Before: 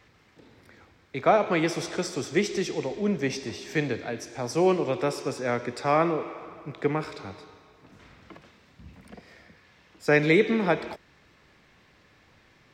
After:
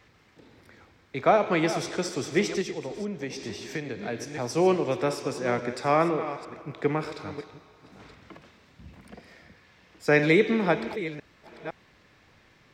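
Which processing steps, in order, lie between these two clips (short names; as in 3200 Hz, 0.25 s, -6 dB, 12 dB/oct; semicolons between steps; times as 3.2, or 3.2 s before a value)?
reverse delay 0.509 s, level -12.5 dB; 2.61–4.03 compressor 6:1, threshold -30 dBFS, peak gain reduction 9.5 dB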